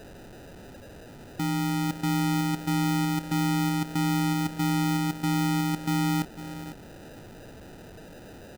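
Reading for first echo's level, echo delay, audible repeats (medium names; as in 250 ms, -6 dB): -12.5 dB, 500 ms, 2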